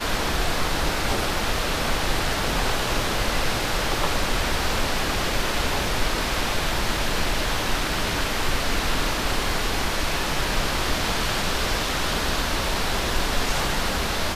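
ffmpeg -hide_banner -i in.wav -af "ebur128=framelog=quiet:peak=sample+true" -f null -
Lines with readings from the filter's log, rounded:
Integrated loudness:
  I:         -24.2 LUFS
  Threshold: -34.2 LUFS
Loudness range:
  LRA:         0.4 LU
  Threshold: -44.2 LUFS
  LRA low:   -24.4 LUFS
  LRA high:  -24.0 LUFS
Sample peak:
  Peak:       -9.2 dBFS
True peak:
  Peak:       -9.1 dBFS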